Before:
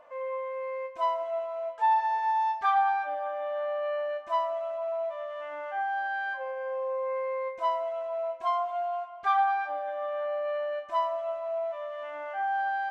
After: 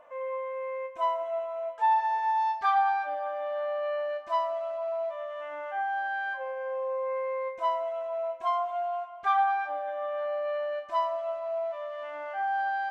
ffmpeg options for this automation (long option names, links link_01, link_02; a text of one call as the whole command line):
ffmpeg -i in.wav -af "asetnsamples=nb_out_samples=441:pad=0,asendcmd='1.78 equalizer g -2;2.38 equalizer g 6;5.11 equalizer g -4;10.18 equalizer g 4.5',equalizer=frequency=4600:width_type=o:width=0.29:gain=-11" out.wav